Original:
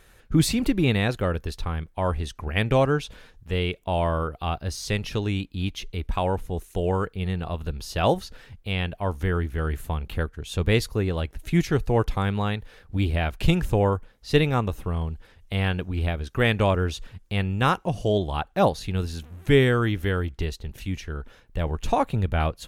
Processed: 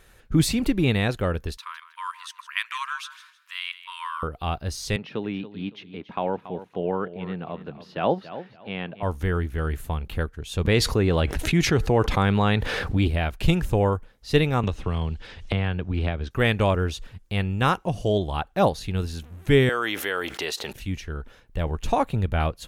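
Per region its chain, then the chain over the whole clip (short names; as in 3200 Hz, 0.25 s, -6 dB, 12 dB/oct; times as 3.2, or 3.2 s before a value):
1.57–4.23 brick-wall FIR high-pass 930 Hz + feedback echo 0.158 s, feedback 28%, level -14 dB
4.96–9.03 HPF 160 Hz 24 dB/oct + air absorption 340 m + feedback echo 0.281 s, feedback 25%, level -13.5 dB
10.65–13.08 HPF 92 Hz 6 dB/oct + high shelf 10000 Hz -12 dB + fast leveller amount 70%
14.63–16.31 air absorption 120 m + three-band squash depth 100%
19.69–20.73 HPF 570 Hz + fast leveller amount 70%
whole clip: dry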